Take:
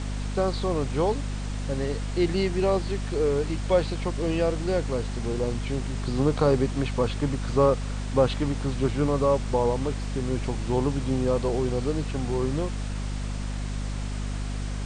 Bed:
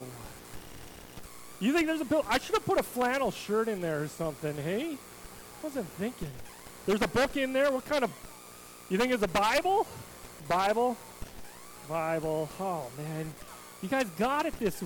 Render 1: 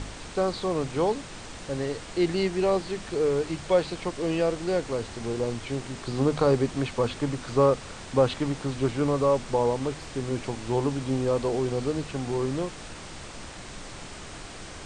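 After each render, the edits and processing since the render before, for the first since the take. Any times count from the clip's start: hum notches 50/100/150/200/250 Hz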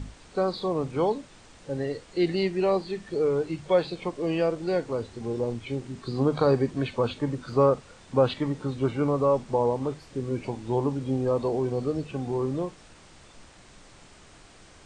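noise print and reduce 11 dB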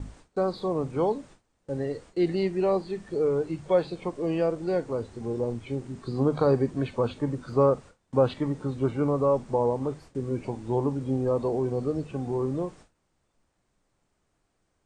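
gate with hold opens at -37 dBFS; peaking EQ 3.5 kHz -7 dB 2.2 oct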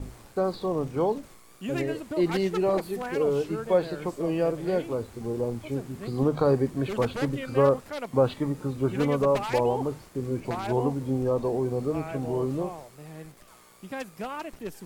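add bed -6.5 dB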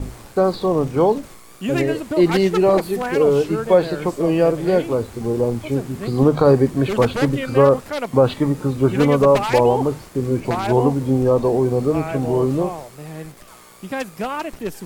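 trim +9.5 dB; peak limiter -3 dBFS, peak gain reduction 3 dB

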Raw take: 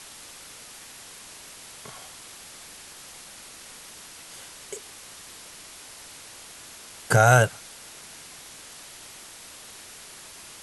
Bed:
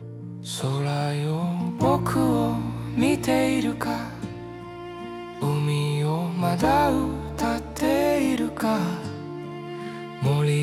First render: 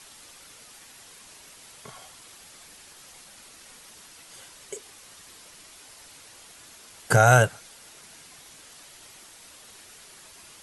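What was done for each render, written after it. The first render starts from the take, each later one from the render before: noise reduction 6 dB, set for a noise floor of -45 dBFS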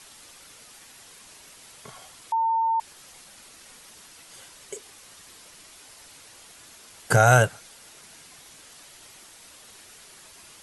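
2.32–2.80 s: bleep 904 Hz -20 dBFS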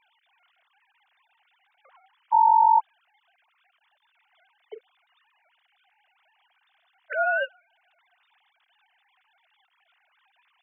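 formants replaced by sine waves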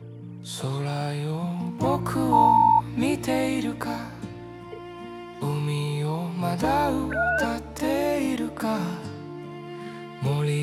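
add bed -3 dB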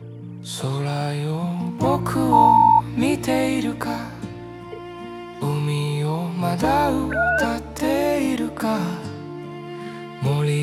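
trim +4 dB

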